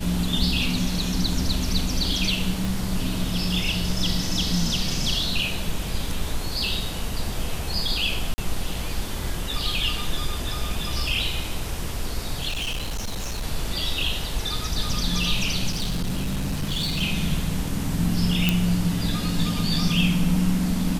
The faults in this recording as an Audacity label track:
2.650000	2.650000	pop
8.340000	8.380000	dropout 40 ms
12.480000	13.450000	clipped -24.5 dBFS
15.700000	17.030000	clipped -21.5 dBFS
18.490000	18.490000	pop -4 dBFS

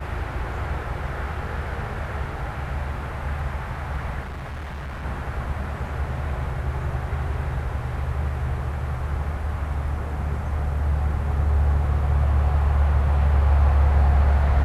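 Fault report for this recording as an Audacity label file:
4.210000	5.050000	clipped -29.5 dBFS

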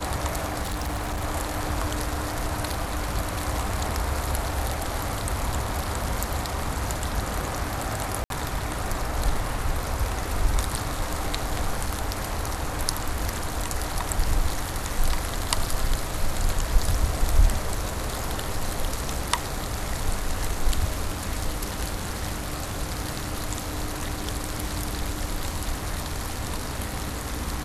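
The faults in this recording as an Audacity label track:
0.620000	1.250000	clipped -25 dBFS
8.240000	8.300000	dropout 62 ms

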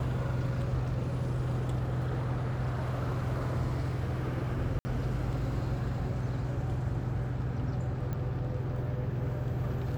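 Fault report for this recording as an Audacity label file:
4.790000	4.850000	dropout 60 ms
8.130000	8.130000	pop -24 dBFS

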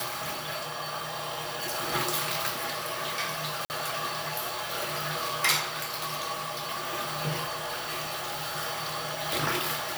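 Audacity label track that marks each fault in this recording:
3.650000	3.700000	dropout 49 ms
7.430000	8.570000	clipped -29.5 dBFS

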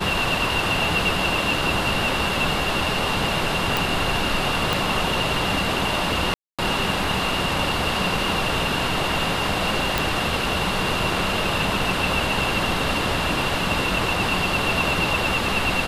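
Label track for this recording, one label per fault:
3.770000	3.770000	pop
4.730000	4.730000	pop
6.340000	6.590000	dropout 246 ms
9.980000	9.980000	pop

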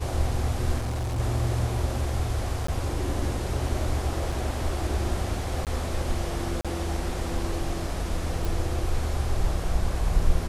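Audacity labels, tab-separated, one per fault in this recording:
0.780000	1.200000	clipped -25.5 dBFS
2.670000	2.680000	dropout 14 ms
4.320000	4.320000	dropout 4.1 ms
5.650000	5.670000	dropout 18 ms
6.610000	6.650000	dropout 36 ms
8.450000	8.450000	pop

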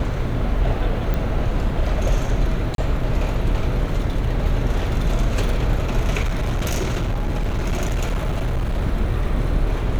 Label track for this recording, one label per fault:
1.140000	1.140000	pop -12 dBFS
2.750000	2.780000	dropout 32 ms
6.230000	8.790000	clipped -17.5 dBFS

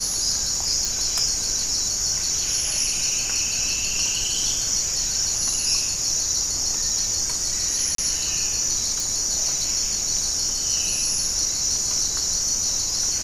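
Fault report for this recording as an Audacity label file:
0.850000	0.850000	pop
7.950000	7.980000	dropout 33 ms
9.000000	9.000000	pop

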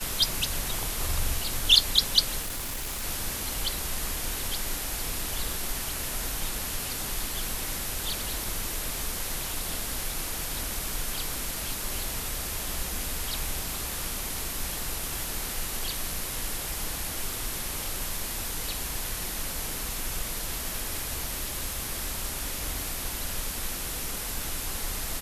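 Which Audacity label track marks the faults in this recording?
2.410000	3.040000	clipped -29.5 dBFS

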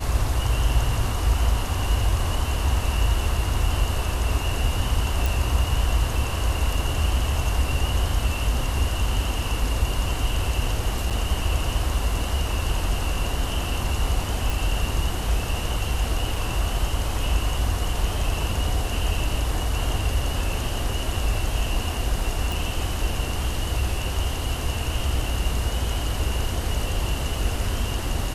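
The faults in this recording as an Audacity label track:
5.260000	5.260000	pop
11.100000	11.110000	dropout 6.5 ms
14.500000	14.500000	pop
16.360000	16.360000	dropout 2.9 ms
22.520000	22.520000	pop

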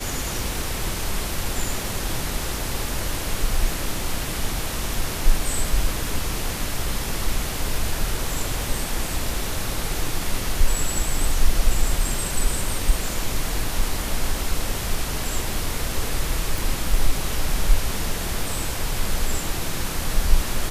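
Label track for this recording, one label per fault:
16.580000	16.580000	pop

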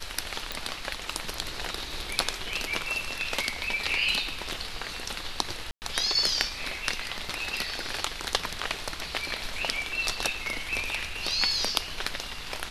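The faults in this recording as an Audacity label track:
0.520000	0.520000	pop
5.710000	5.820000	dropout 109 ms
7.290000	7.290000	dropout 3.4 ms

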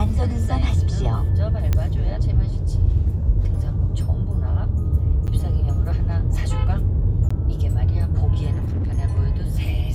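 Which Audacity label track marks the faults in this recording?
1.730000	1.730000	pop -8 dBFS
5.270000	5.280000	dropout 8.6 ms
7.290000	7.300000	dropout 15 ms
8.520000	8.990000	clipped -20 dBFS

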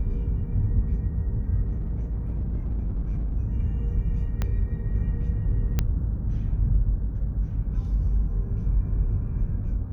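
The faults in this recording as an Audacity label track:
1.630000	3.370000	clipped -23.5 dBFS
4.420000	4.420000	pop -14 dBFS
5.790000	5.790000	pop -10 dBFS

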